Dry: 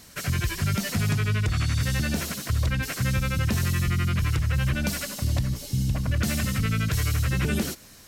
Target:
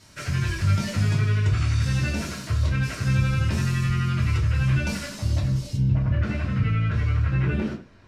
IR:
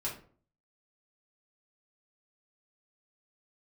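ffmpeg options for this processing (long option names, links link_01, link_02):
-filter_complex "[0:a]asetnsamples=nb_out_samples=441:pad=0,asendcmd='5.76 lowpass f 2200',lowpass=8000[link_01];[1:a]atrim=start_sample=2205,afade=type=out:start_time=0.19:duration=0.01,atrim=end_sample=8820[link_02];[link_01][link_02]afir=irnorm=-1:irlink=0,volume=-3dB"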